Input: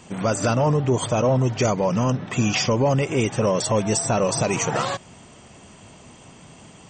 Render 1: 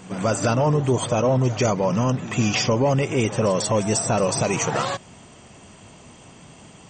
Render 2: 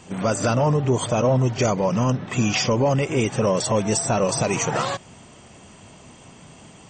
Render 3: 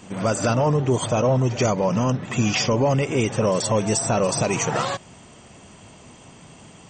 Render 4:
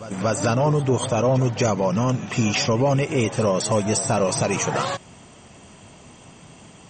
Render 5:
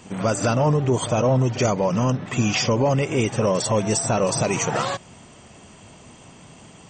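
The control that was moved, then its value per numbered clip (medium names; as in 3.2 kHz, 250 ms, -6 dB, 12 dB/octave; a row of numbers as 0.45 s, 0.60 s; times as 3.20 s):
pre-echo, time: 143 ms, 32 ms, 83 ms, 235 ms, 54 ms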